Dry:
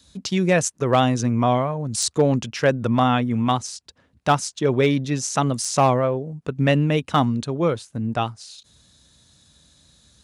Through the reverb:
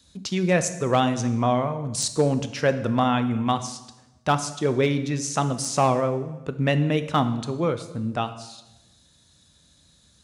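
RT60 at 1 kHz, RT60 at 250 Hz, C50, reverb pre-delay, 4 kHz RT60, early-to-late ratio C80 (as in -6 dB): 1.0 s, 1.1 s, 12.0 dB, 13 ms, 0.95 s, 14.5 dB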